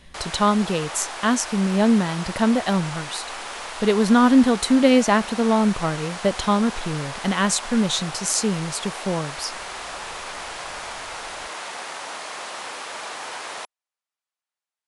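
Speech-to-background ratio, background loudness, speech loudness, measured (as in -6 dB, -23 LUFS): 11.5 dB, -32.5 LUFS, -21.0 LUFS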